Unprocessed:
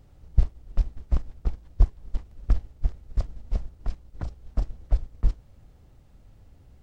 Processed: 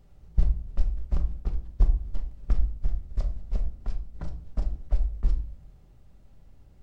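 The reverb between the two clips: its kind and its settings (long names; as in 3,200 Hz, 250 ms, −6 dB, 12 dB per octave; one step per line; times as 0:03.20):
rectangular room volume 570 cubic metres, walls furnished, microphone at 1.2 metres
level −4 dB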